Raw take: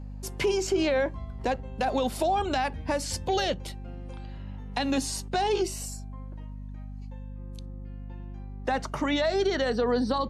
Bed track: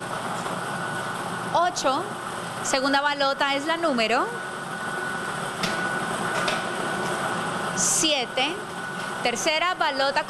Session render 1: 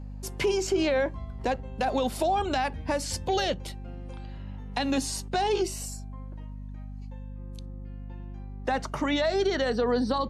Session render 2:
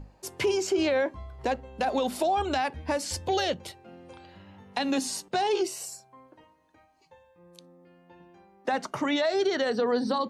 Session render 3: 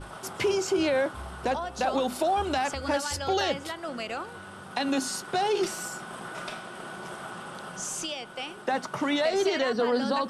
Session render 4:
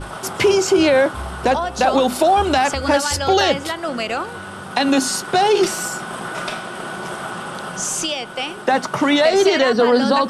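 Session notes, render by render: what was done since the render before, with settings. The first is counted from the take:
no audible change
hum notches 50/100/150/200/250 Hz
add bed track -12.5 dB
trim +11 dB

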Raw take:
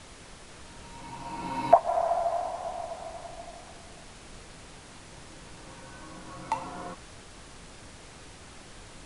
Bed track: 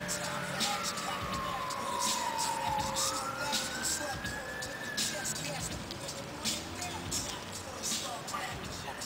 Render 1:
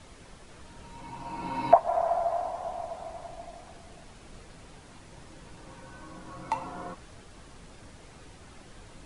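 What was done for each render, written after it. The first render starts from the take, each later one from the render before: noise reduction 6 dB, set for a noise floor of -49 dBFS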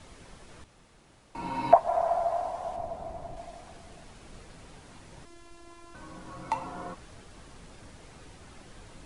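0.64–1.35 s: room tone; 2.76–3.37 s: tilt shelf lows +5.5 dB, about 770 Hz; 5.25–5.95 s: robot voice 343 Hz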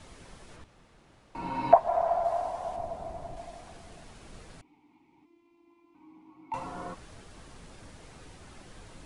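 0.56–2.25 s: treble shelf 5.9 kHz -9.5 dB; 4.61–6.54 s: vowel filter u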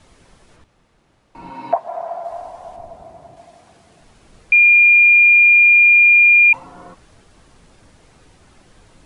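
1.51–2.31 s: high-pass 160 Hz; 3.02–4.01 s: high-pass 85 Hz; 4.52–6.53 s: bleep 2.41 kHz -6.5 dBFS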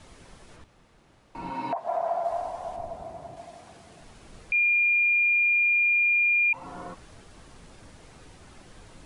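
compression, threshold -18 dBFS, peak gain reduction 9 dB; peak limiter -19 dBFS, peak gain reduction 10 dB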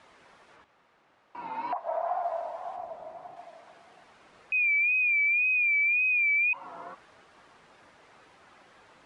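wow and flutter 80 cents; band-pass filter 1.3 kHz, Q 0.71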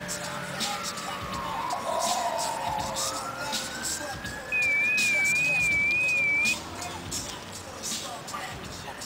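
add bed track +2 dB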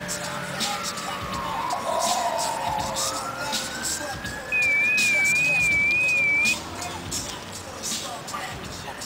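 trim +3.5 dB

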